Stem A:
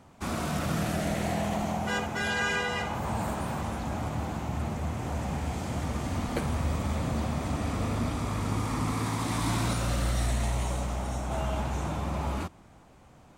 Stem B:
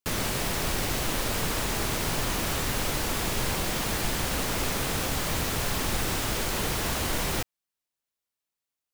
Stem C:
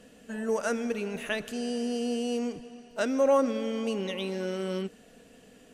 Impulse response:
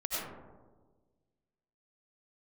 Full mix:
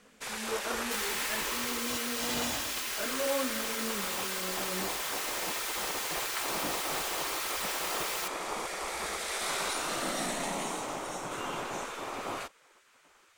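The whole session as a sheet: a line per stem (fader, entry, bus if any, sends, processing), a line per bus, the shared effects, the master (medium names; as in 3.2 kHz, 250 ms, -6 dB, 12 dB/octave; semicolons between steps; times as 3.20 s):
+2.5 dB, 0.00 s, no send, spectral gate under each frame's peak -15 dB weak
-3.0 dB, 0.85 s, no send, comb filter that takes the minimum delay 3.8 ms; high-pass 1.3 kHz 12 dB/octave
-5.5 dB, 0.00 s, no send, detune thickener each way 28 cents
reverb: none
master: none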